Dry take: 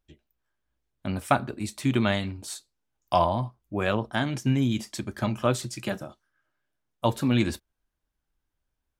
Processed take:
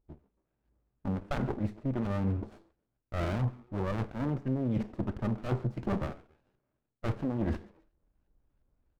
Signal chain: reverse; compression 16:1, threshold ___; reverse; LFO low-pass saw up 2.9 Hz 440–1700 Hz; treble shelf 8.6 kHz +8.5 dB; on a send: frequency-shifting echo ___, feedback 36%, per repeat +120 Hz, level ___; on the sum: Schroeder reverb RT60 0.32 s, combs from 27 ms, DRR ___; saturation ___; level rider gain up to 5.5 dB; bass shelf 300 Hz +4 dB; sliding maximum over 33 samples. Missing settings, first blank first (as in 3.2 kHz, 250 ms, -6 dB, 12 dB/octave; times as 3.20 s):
-34 dBFS, 137 ms, -24 dB, 15.5 dB, -26 dBFS